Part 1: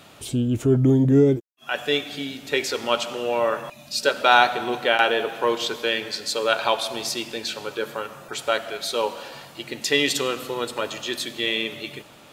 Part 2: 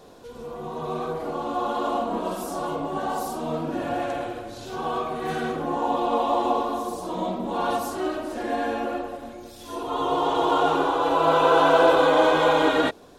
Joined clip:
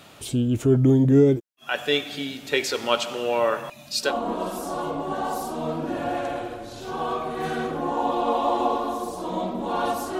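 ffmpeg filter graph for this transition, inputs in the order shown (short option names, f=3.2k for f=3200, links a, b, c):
-filter_complex "[0:a]apad=whole_dur=10.19,atrim=end=10.19,atrim=end=4.15,asetpts=PTS-STARTPTS[a];[1:a]atrim=start=1.88:end=8.04,asetpts=PTS-STARTPTS[b];[a][b]acrossfade=d=0.12:c1=tri:c2=tri"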